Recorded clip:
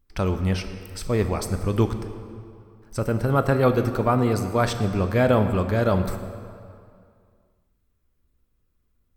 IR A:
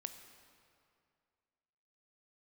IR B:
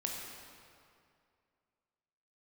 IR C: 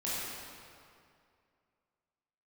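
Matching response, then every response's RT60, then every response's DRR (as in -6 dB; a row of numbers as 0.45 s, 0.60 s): A; 2.3 s, 2.4 s, 2.4 s; 8.0 dB, -1.0 dB, -9.5 dB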